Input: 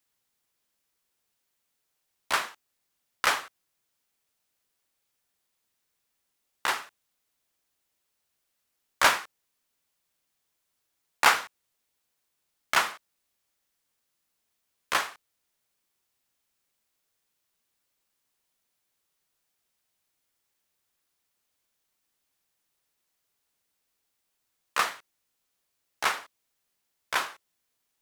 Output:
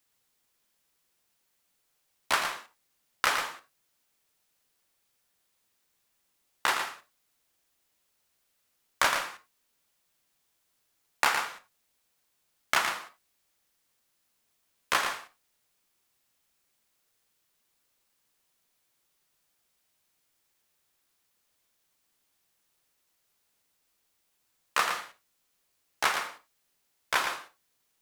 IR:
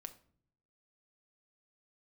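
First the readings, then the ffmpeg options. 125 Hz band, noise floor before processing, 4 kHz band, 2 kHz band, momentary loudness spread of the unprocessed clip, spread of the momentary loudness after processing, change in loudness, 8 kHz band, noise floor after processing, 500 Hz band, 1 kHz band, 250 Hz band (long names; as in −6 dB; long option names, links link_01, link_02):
−0.5 dB, −79 dBFS, −1.0 dB, −1.5 dB, 12 LU, 13 LU, −2.0 dB, −1.0 dB, −75 dBFS, −1.0 dB, −1.5 dB, −0.5 dB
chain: -filter_complex "[0:a]acompressor=threshold=-24dB:ratio=10,asplit=2[link_01][link_02];[1:a]atrim=start_sample=2205,afade=type=out:start_time=0.15:duration=0.01,atrim=end_sample=7056,adelay=114[link_03];[link_02][link_03]afir=irnorm=-1:irlink=0,volume=-1.5dB[link_04];[link_01][link_04]amix=inputs=2:normalize=0,volume=3dB"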